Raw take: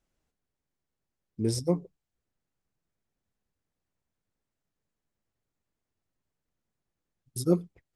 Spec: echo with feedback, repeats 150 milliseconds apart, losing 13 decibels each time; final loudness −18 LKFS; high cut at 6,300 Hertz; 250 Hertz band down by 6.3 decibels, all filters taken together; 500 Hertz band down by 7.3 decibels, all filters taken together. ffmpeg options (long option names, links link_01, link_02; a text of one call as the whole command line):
ffmpeg -i in.wav -af "lowpass=6300,equalizer=frequency=250:width_type=o:gain=-8.5,equalizer=frequency=500:width_type=o:gain=-6,aecho=1:1:150|300|450:0.224|0.0493|0.0108,volume=17.5dB" out.wav